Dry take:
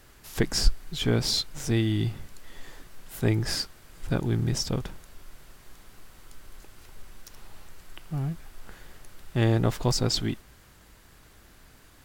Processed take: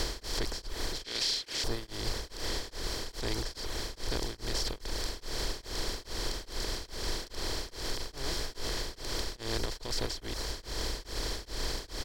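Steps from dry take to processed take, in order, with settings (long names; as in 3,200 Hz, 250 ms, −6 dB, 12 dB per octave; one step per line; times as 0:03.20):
compressor on every frequency bin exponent 0.2
0:01.04–0:01.64: meter weighting curve D
reverb reduction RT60 0.78 s
parametric band 160 Hz −11.5 dB 1.3 octaves
brickwall limiter −12 dBFS, peak gain reduction 11 dB
harmonic generator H 6 −35 dB, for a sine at −9.5 dBFS
0:08.22–0:08.71: double-tracking delay 17 ms −4.5 dB
on a send: single-tap delay 355 ms −16.5 dB
on the sum: tremolo along a rectified sine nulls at 2.4 Hz
level −8.5 dB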